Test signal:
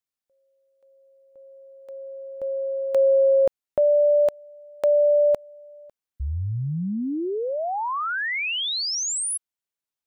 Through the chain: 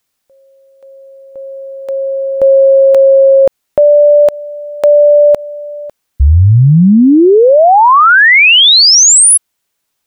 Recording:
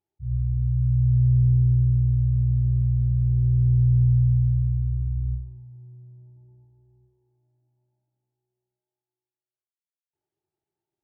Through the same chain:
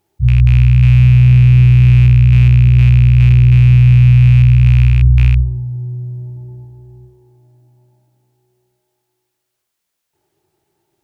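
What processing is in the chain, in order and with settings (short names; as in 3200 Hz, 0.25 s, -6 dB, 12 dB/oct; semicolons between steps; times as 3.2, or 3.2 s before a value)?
rattling part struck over -21 dBFS, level -30 dBFS; maximiser +22.5 dB; gain -1 dB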